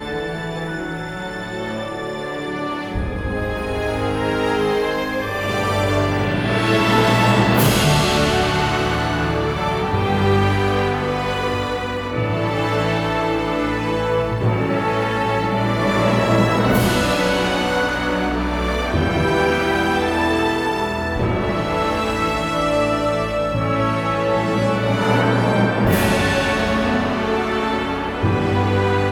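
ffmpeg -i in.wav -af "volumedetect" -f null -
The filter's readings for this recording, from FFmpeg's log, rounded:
mean_volume: -18.9 dB
max_volume: -3.0 dB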